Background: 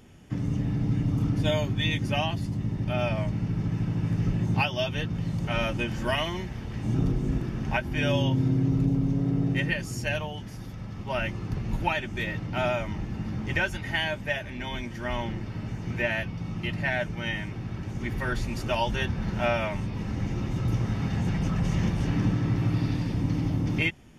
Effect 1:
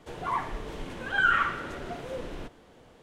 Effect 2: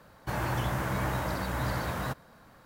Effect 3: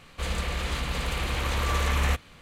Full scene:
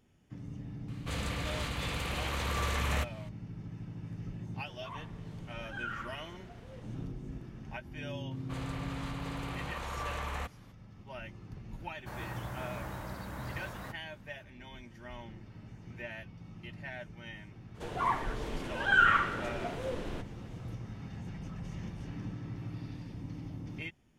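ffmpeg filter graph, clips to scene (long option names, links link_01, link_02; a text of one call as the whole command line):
ffmpeg -i bed.wav -i cue0.wav -i cue1.wav -i cue2.wav -filter_complex "[3:a]asplit=2[link_01][link_02];[1:a]asplit=2[link_03][link_04];[0:a]volume=-15.5dB[link_05];[link_01]highpass=65[link_06];[link_02]equalizer=frequency=880:width_type=o:width=1.9:gain=9[link_07];[link_06]atrim=end=2.41,asetpts=PTS-STARTPTS,volume=-5.5dB,afade=type=in:duration=0.004:curve=hsin,afade=type=out:start_time=2.406:duration=0.004:curve=hsin,adelay=880[link_08];[link_03]atrim=end=3.02,asetpts=PTS-STARTPTS,volume=-16.5dB,afade=type=in:duration=0.004:curve=hsin,afade=type=out:start_time=3.016:duration=0.004:curve=hsin,adelay=4590[link_09];[link_07]atrim=end=2.41,asetpts=PTS-STARTPTS,volume=-15.5dB,afade=type=in:duration=0.004:curve=hsin,afade=type=out:start_time=2.406:duration=0.004:curve=hsin,adelay=8310[link_10];[2:a]atrim=end=2.65,asetpts=PTS-STARTPTS,volume=-11dB,afade=type=in:duration=0.004:curve=hsin,afade=type=out:start_time=2.646:duration=0.004:curve=hsin,adelay=11790[link_11];[link_04]atrim=end=3.02,asetpts=PTS-STARTPTS,volume=-0.5dB,afade=type=in:duration=0.02,afade=type=out:start_time=3:duration=0.02,adelay=17740[link_12];[link_05][link_08][link_09][link_10][link_11][link_12]amix=inputs=6:normalize=0" out.wav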